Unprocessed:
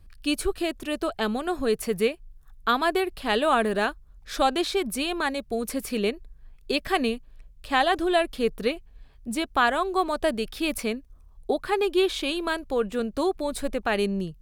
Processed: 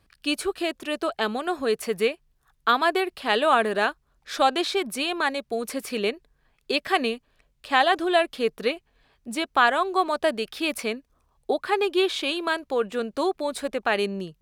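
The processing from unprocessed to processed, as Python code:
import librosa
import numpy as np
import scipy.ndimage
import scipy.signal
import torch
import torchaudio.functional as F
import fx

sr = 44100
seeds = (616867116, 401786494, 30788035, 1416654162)

y = fx.highpass(x, sr, hz=450.0, slope=6)
y = fx.high_shelf(y, sr, hz=8100.0, db=-8.5)
y = y * 10.0 ** (3.5 / 20.0)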